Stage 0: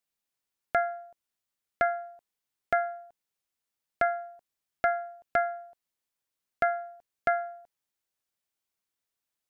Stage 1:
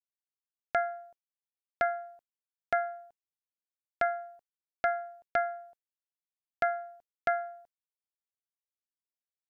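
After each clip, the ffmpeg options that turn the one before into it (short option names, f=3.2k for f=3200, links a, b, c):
-af "agate=range=-33dB:threshold=-48dB:ratio=3:detection=peak,volume=-2.5dB"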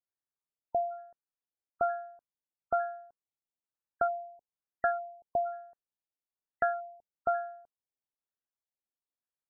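-af "afftfilt=real='re*lt(b*sr/1024,900*pow(2000/900,0.5+0.5*sin(2*PI*1.1*pts/sr)))':imag='im*lt(b*sr/1024,900*pow(2000/900,0.5+0.5*sin(2*PI*1.1*pts/sr)))':win_size=1024:overlap=0.75"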